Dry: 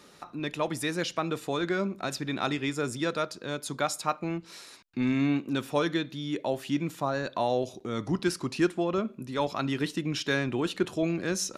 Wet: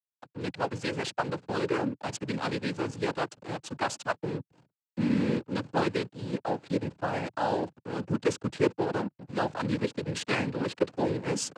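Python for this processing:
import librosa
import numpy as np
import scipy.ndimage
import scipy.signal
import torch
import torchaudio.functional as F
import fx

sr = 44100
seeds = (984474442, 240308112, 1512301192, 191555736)

y = fx.backlash(x, sr, play_db=-32.5)
y = fx.noise_vocoder(y, sr, seeds[0], bands=8)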